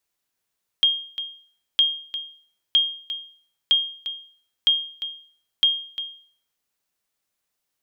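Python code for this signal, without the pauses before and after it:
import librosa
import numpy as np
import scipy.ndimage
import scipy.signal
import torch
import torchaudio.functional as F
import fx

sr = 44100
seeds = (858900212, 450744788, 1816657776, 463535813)

y = fx.sonar_ping(sr, hz=3230.0, decay_s=0.49, every_s=0.96, pings=6, echo_s=0.35, echo_db=-12.0, level_db=-10.5)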